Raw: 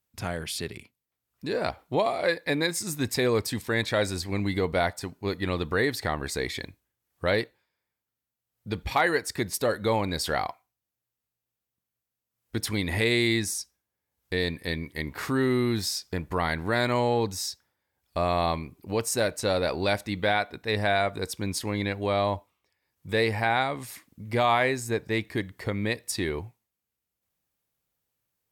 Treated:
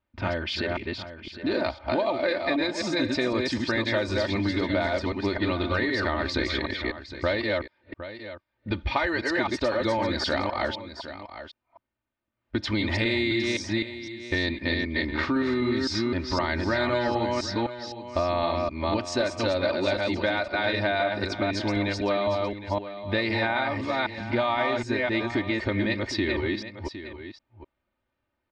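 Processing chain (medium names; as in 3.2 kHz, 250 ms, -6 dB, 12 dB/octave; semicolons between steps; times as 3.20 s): chunks repeated in reverse 256 ms, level -3 dB; level-controlled noise filter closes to 2.1 kHz, open at -20 dBFS; low-pass 5.1 kHz 24 dB/octave; comb 3.3 ms, depth 74%; compression 5:1, threshold -28 dBFS, peak gain reduction 11.5 dB; on a send: delay 761 ms -12.5 dB; on the sum: trim +5 dB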